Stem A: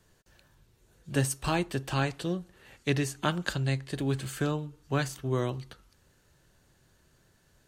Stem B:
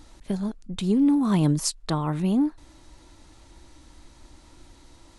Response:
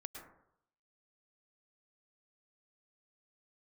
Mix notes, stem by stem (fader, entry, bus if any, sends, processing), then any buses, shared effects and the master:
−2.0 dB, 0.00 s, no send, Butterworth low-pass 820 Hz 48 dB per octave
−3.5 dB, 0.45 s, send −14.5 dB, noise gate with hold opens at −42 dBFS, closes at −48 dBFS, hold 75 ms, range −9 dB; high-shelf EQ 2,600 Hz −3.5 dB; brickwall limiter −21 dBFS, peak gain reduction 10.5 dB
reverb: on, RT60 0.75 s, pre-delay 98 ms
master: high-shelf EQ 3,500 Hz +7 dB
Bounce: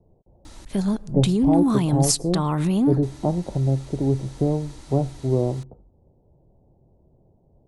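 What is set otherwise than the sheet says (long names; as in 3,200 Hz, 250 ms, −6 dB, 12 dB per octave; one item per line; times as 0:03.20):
stem A −2.0 dB → +8.0 dB
stem B −3.5 dB → +6.0 dB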